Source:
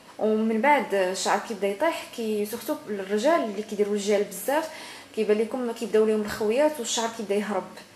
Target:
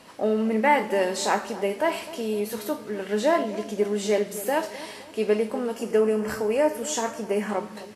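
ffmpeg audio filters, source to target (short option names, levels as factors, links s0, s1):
-filter_complex "[0:a]asettb=1/sr,asplit=3[s0][s1][s2];[s0]atrim=end=5.764[s3];[s1]atrim=start=5.76:end=7.49,asetpts=PTS-STARTPTS,afade=t=in:d=0.004:c=qsin,afade=t=out:st=1.726:d=0.004:c=qsin,equalizer=f=3800:w=3.6:g=-12.5[s4];[s2]atrim=start=7.486[s5];[s3][s4]acrossfade=d=0.004:c1=hsin:c2=qsin[s6];[s6][s5]acrossfade=d=0.004:c1=qsin:c2=hsin,asplit=2[s7][s8];[s8]adelay=258,lowpass=f=880:p=1,volume=0.2,asplit=2[s9][s10];[s10]adelay=258,lowpass=f=880:p=1,volume=0.54,asplit=2[s11][s12];[s12]adelay=258,lowpass=f=880:p=1,volume=0.54,asplit=2[s13][s14];[s14]adelay=258,lowpass=f=880:p=1,volume=0.54,asplit=2[s15][s16];[s16]adelay=258,lowpass=f=880:p=1,volume=0.54[s17];[s7][s9][s11][s13][s15][s17]amix=inputs=6:normalize=0"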